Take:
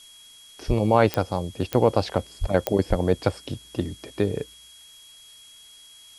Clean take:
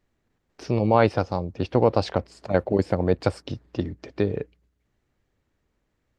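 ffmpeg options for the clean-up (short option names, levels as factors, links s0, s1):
-filter_complex "[0:a]adeclick=t=4,bandreject=f=3300:w=30,asplit=3[s0][s1][s2];[s0]afade=t=out:st=0.67:d=0.02[s3];[s1]highpass=f=140:w=0.5412,highpass=f=140:w=1.3066,afade=t=in:st=0.67:d=0.02,afade=t=out:st=0.79:d=0.02[s4];[s2]afade=t=in:st=0.79:d=0.02[s5];[s3][s4][s5]amix=inputs=3:normalize=0,asplit=3[s6][s7][s8];[s6]afade=t=out:st=2.4:d=0.02[s9];[s7]highpass=f=140:w=0.5412,highpass=f=140:w=1.3066,afade=t=in:st=2.4:d=0.02,afade=t=out:st=2.52:d=0.02[s10];[s8]afade=t=in:st=2.52:d=0.02[s11];[s9][s10][s11]amix=inputs=3:normalize=0,asplit=3[s12][s13][s14];[s12]afade=t=out:st=2.89:d=0.02[s15];[s13]highpass=f=140:w=0.5412,highpass=f=140:w=1.3066,afade=t=in:st=2.89:d=0.02,afade=t=out:st=3.01:d=0.02[s16];[s14]afade=t=in:st=3.01:d=0.02[s17];[s15][s16][s17]amix=inputs=3:normalize=0,afftdn=nr=25:nf=-49"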